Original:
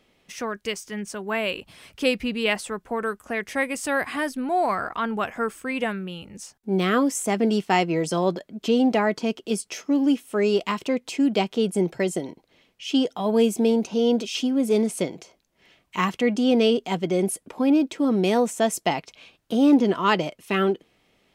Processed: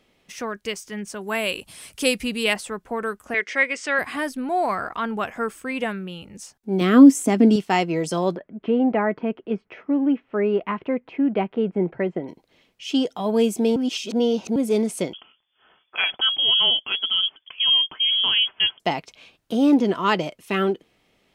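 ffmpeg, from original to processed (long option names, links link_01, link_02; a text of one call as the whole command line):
ffmpeg -i in.wav -filter_complex "[0:a]asettb=1/sr,asplit=3[link_01][link_02][link_03];[link_01]atrim=end=1.214[link_04];[link_02]atrim=start=1.21:end=2.54,asetpts=PTS-STARTPTS,afade=type=in:duration=0.004:curve=qsin,afade=type=out:start_time=1.326:duration=0.004:curve=qsin,equalizer=frequency=9700:width=0.65:gain=15[link_05];[link_03]atrim=start=2.536[link_06];[link_04][link_05]acrossfade=duration=0.004:curve1=hsin:curve2=qsin[link_07];[link_07][link_06]acrossfade=duration=0.004:curve1=qsin:curve2=hsin,asettb=1/sr,asplit=3[link_08][link_09][link_10];[link_08]atrim=end=3.344[link_11];[link_09]atrim=start=3.34:end=3.99,asetpts=PTS-STARTPTS,afade=type=in:duration=0.004:curve=qsin,afade=type=out:start_time=0.646:duration=0.004:curve=qsin,highpass=360,equalizer=frequency=420:width_type=q:width=4:gain=4,equalizer=frequency=820:width_type=q:width=4:gain=-6,equalizer=frequency=1500:width_type=q:width=4:gain=4,equalizer=frequency=2100:width_type=q:width=4:gain=9,equalizer=frequency=3100:width_type=q:width=4:gain=4,equalizer=frequency=5400:width_type=q:width=4:gain=3,lowpass=frequency=6800:width=0.5412,lowpass=frequency=6800:width=1.3066[link_12];[link_10]atrim=start=3.986[link_13];[link_11][link_12]acrossfade=duration=0.004:curve1=hsin:curve2=qsin[link_14];[link_14][link_13]acrossfade=duration=0.004:curve1=qsin:curve2=hsin,asettb=1/sr,asplit=3[link_15][link_16][link_17];[link_15]atrim=end=6.814[link_18];[link_16]atrim=start=6.81:end=7.56,asetpts=PTS-STARTPTS,afade=type=in:duration=0.004:curve=qsin,afade=type=out:start_time=0.746:duration=0.004:curve=qsin,equalizer=frequency=270:width_type=o:width=0.6:gain=14.5[link_19];[link_17]atrim=start=7.556[link_20];[link_18][link_19]acrossfade=duration=0.004:curve1=hsin:curve2=qsin[link_21];[link_21][link_20]acrossfade=duration=0.004:curve1=qsin:curve2=hsin,asettb=1/sr,asplit=3[link_22][link_23][link_24];[link_22]atrim=end=8.364[link_25];[link_23]atrim=start=8.36:end=12.28,asetpts=PTS-STARTPTS,afade=type=in:duration=0.004:curve=qsin,afade=type=out:start_time=3.916:duration=0.004:curve=qsin,lowpass=frequency=2200:width=0.5412,lowpass=frequency=2200:width=1.3066[link_26];[link_24]atrim=start=12.276[link_27];[link_25][link_26]acrossfade=duration=0.004:curve1=hsin:curve2=qsin[link_28];[link_28][link_27]acrossfade=duration=0.004:curve1=qsin:curve2=hsin,asettb=1/sr,asplit=3[link_29][link_30][link_31];[link_29]atrim=end=15.134[link_32];[link_30]atrim=start=15.13:end=18.8,asetpts=PTS-STARTPTS,afade=type=in:duration=0.004:curve=qsin,afade=type=out:start_time=3.666:duration=0.004:curve=qsin,lowpass=frequency=3000:width_type=q:width=0.5098,lowpass=frequency=3000:width_type=q:width=0.6013,lowpass=frequency=3000:width_type=q:width=0.9,lowpass=frequency=3000:width_type=q:width=2.563,afreqshift=-3500[link_33];[link_31]atrim=start=18.796[link_34];[link_32][link_33]acrossfade=duration=0.004:curve1=hsin:curve2=qsin[link_35];[link_35][link_34]acrossfade=duration=0.004:curve1=qsin:curve2=hsin,asplit=3[link_36][link_37][link_38];[link_36]atrim=end=13.762[link_39];[link_37]atrim=start=13.758:end=14.562,asetpts=PTS-STARTPTS,areverse[link_40];[link_38]atrim=start=14.558[link_41];[link_39][link_40]acrossfade=duration=0.004:curve1=hsin:curve2=hsin[link_42];[link_42][link_41]acrossfade=duration=0.004:curve1=hsin:curve2=hsin" out.wav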